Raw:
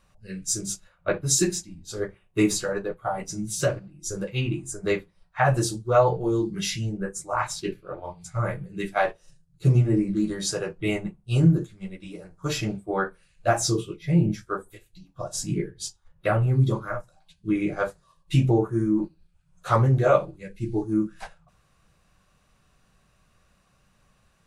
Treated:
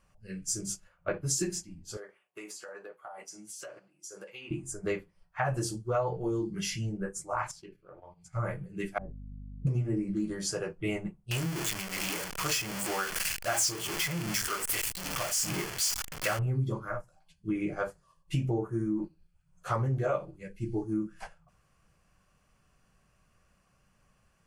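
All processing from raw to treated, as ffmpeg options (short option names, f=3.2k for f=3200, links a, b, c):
-filter_complex "[0:a]asettb=1/sr,asplit=3[a][b][c];[a]atrim=end=1.974[d];[b]atrim=start=1.97:end=4.51,asetpts=PTS-STARTPTS,afade=t=in:d=0.004:c=qsin,afade=t=out:st=2.536:d=0.004:c=qsin,highpass=560,acompressor=threshold=-36dB:ratio=8:attack=3.2:release=140:knee=1:detection=peak[e];[c]atrim=start=4.506[f];[d][e]acrossfade=d=0.004:c1=hsin:c2=qsin[g];[g][f]acrossfade=d=0.004:c1=qsin:c2=hsin,asettb=1/sr,asplit=3[h][i][j];[h]atrim=end=7.514[k];[i]atrim=start=7.51:end=8.33,asetpts=PTS-STARTPTS,afade=t=in:d=0.004:c=qsin,afade=t=out:st=0.816:d=0.004:c=qsin,agate=range=-8dB:threshold=-42dB:ratio=16:release=100:detection=peak,highshelf=f=10k:g=-5.5,acompressor=threshold=-46dB:ratio=3:attack=3.2:release=140:knee=1:detection=peak[l];[j]atrim=start=8.326[m];[k][l]acrossfade=d=0.004:c1=hsin:c2=qsin[n];[n][m]acrossfade=d=0.004:c1=qsin:c2=hsin,asettb=1/sr,asplit=3[o][p][q];[o]atrim=end=8.984[r];[p]atrim=start=8.98:end=9.67,asetpts=PTS-STARTPTS,afade=t=in:d=0.004:c=qsin,afade=t=out:st=0.686:d=0.004:c=qsin,lowpass=f=180:t=q:w=1.9,aeval=exprs='val(0)+0.0126*(sin(2*PI*50*n/s)+sin(2*PI*2*50*n/s)/2+sin(2*PI*3*50*n/s)/3+sin(2*PI*4*50*n/s)/4+sin(2*PI*5*50*n/s)/5)':c=same[s];[q]atrim=start=9.666[t];[r][s]acrossfade=d=0.004:c1=hsin:c2=qsin[u];[u][t]acrossfade=d=0.004:c1=qsin:c2=hsin,asettb=1/sr,asplit=3[v][w][x];[v]atrim=end=11.314[y];[w]atrim=start=11.31:end=16.39,asetpts=PTS-STARTPTS,afade=t=in:d=0.004:c=qsin,afade=t=out:st=5.076:d=0.004:c=qsin,aeval=exprs='val(0)+0.5*0.0794*sgn(val(0))':c=same,tiltshelf=f=860:g=-8,tremolo=f=2.6:d=0.49[z];[x]atrim=start=16.386[aa];[y][z]acrossfade=d=0.004:c1=hsin:c2=qsin[ab];[ab][aa]acrossfade=d=0.004:c1=qsin:c2=hsin,bandreject=f=3.8k:w=5.3,acompressor=threshold=-23dB:ratio=3,volume=-4.5dB"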